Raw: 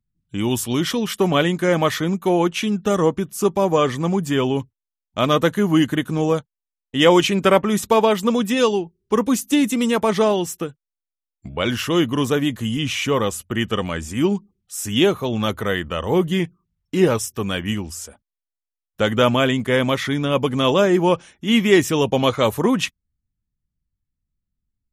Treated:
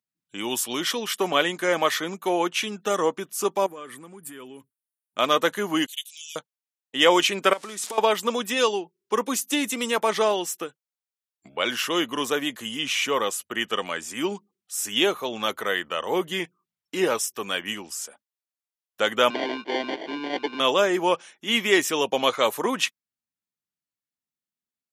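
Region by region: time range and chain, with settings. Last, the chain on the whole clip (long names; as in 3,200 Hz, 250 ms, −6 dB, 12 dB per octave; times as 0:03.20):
0:03.66–0:05.19: drawn EQ curve 300 Hz 0 dB, 780 Hz −11 dB, 1,400 Hz −2 dB, 6,300 Hz −13 dB, 9,300 Hz +10 dB, 14,000 Hz +5 dB + downward compressor 12 to 1, threshold −29 dBFS
0:05.86–0:06.36: Butterworth high-pass 2,700 Hz 48 dB per octave + high-shelf EQ 4,300 Hz +5 dB
0:07.53–0:07.98: spike at every zero crossing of −18 dBFS + low-pass filter 9,700 Hz 24 dB per octave + downward compressor 20 to 1, threshold −25 dBFS
0:19.30–0:20.60: sample-rate reduction 1,300 Hz + loudspeaker in its box 280–3,500 Hz, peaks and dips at 320 Hz +8 dB, 540 Hz −7 dB, 780 Hz −6 dB, 1,200 Hz −10 dB, 1,800 Hz −9 dB, 3,300 Hz −3 dB
whole clip: high-pass filter 290 Hz 12 dB per octave; low-shelf EQ 450 Hz −9.5 dB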